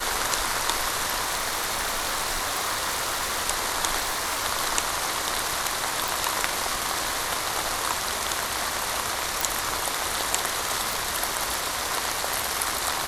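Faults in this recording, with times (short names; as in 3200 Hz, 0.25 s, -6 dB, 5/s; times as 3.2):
crackle 110/s -33 dBFS
1.22–3.44 clipped -21.5 dBFS
4.01–4.43 clipped -22.5 dBFS
6.08 pop
9.41 pop
10.93 pop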